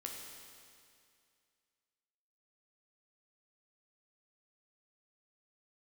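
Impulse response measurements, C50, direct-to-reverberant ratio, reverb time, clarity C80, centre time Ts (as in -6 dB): 2.0 dB, -0.5 dB, 2.3 s, 3.0 dB, 89 ms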